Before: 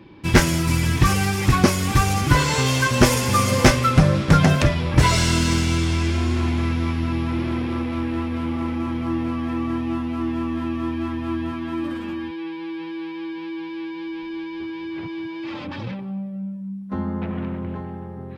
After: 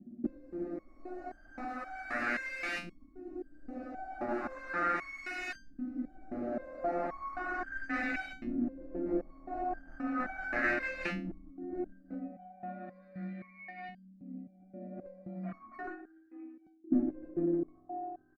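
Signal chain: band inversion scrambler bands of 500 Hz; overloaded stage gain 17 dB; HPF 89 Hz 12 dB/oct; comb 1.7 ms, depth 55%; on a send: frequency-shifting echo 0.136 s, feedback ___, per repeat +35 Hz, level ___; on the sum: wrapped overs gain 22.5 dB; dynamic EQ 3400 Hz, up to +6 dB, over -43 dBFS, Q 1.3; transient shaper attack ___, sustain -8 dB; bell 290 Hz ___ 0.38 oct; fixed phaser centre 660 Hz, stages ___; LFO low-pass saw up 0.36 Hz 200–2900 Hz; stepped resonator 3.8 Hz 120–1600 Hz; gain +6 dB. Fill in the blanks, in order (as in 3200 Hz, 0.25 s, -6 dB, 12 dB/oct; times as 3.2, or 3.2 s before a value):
48%, -23 dB, +10 dB, +11.5 dB, 8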